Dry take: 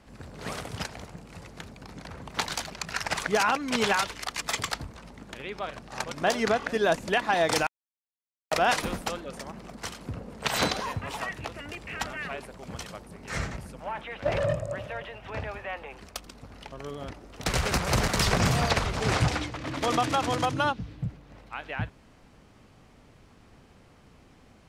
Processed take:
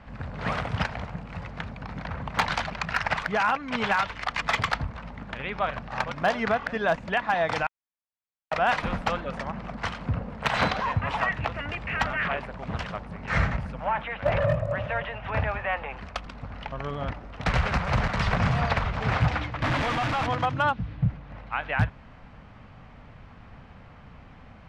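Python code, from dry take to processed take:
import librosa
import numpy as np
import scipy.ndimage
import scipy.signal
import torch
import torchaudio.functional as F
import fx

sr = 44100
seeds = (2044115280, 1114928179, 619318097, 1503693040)

y = fx.clip_1bit(x, sr, at=(19.62, 20.27))
y = scipy.signal.sosfilt(scipy.signal.butter(2, 2300.0, 'lowpass', fs=sr, output='sos'), y)
y = fx.peak_eq(y, sr, hz=360.0, db=-11.5, octaves=0.95)
y = fx.rider(y, sr, range_db=4, speed_s=0.5)
y = np.clip(y, -10.0 ** (-20.5 / 20.0), 10.0 ** (-20.5 / 20.0))
y = fx.doppler_dist(y, sr, depth_ms=0.76, at=(12.19, 13.08))
y = F.gain(torch.from_numpy(y), 6.0).numpy()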